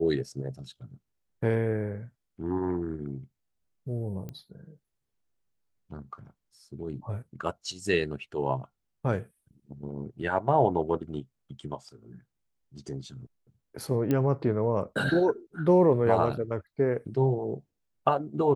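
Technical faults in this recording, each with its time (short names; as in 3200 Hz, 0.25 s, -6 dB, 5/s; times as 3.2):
4.29 pop -26 dBFS
14.11 pop -15 dBFS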